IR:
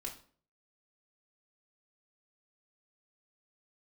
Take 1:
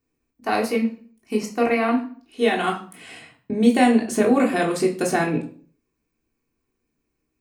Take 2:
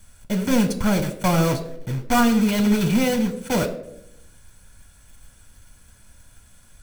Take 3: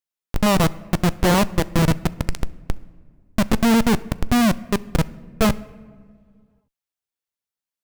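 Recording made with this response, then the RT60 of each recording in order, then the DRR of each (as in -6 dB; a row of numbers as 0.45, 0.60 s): 1; 0.45, 0.80, 2.1 s; -2.0, 7.5, 17.0 dB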